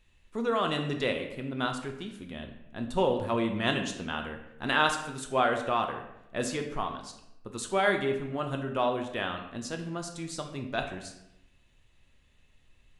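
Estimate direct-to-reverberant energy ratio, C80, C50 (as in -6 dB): 4.0 dB, 10.0 dB, 7.5 dB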